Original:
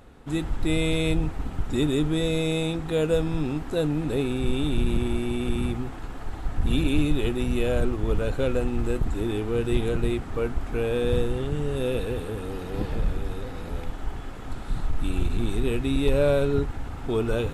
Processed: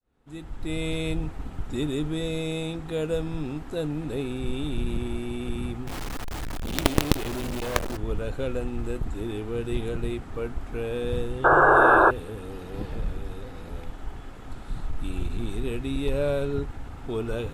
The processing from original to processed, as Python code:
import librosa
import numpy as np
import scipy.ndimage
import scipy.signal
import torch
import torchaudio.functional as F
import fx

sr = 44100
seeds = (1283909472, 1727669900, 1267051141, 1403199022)

y = fx.fade_in_head(x, sr, length_s=0.89)
y = fx.quant_companded(y, sr, bits=2, at=(5.87, 7.97))
y = fx.spec_paint(y, sr, seeds[0], shape='noise', start_s=11.44, length_s=0.67, low_hz=310.0, high_hz=1700.0, level_db=-12.0)
y = y * 10.0 ** (-4.5 / 20.0)